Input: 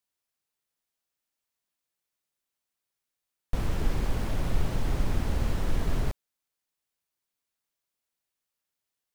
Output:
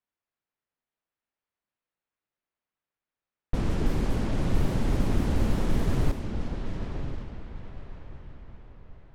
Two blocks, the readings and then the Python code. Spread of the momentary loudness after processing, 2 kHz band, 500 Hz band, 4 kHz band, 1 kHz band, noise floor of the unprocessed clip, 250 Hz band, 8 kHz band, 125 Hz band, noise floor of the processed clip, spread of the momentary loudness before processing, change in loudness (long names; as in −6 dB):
19 LU, +1.0 dB, +4.5 dB, +1.0 dB, +2.0 dB, below −85 dBFS, +7.0 dB, 0.0 dB, +3.5 dB, below −85 dBFS, 5 LU, +2.0 dB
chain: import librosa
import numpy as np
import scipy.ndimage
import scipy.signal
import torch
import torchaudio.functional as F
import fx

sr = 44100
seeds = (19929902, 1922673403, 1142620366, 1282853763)

y = fx.echo_diffused(x, sr, ms=989, feedback_pct=44, wet_db=-7.0)
y = fx.env_lowpass(y, sr, base_hz=2200.0, full_db=-19.5)
y = fx.dynamic_eq(y, sr, hz=250.0, q=0.72, threshold_db=-46.0, ratio=4.0, max_db=7)